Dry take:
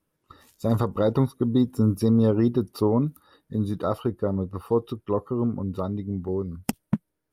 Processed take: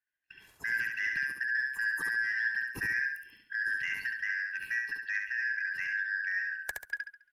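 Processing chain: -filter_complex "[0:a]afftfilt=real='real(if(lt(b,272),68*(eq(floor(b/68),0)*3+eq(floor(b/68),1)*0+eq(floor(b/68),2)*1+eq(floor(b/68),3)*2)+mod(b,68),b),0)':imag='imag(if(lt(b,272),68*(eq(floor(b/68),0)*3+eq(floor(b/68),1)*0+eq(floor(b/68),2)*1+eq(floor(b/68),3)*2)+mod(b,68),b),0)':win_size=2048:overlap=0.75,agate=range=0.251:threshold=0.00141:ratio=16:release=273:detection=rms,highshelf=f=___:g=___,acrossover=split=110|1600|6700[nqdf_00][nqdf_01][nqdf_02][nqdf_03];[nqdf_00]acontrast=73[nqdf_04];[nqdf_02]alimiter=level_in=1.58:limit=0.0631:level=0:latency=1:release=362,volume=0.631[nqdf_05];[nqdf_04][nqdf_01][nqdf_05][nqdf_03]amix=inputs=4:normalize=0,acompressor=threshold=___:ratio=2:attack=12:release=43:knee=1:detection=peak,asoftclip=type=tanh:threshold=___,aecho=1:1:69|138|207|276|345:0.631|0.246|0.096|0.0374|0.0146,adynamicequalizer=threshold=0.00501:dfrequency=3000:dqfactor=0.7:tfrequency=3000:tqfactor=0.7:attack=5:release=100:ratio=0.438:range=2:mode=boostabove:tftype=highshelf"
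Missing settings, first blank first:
2000, -8.5, 0.02, 0.0708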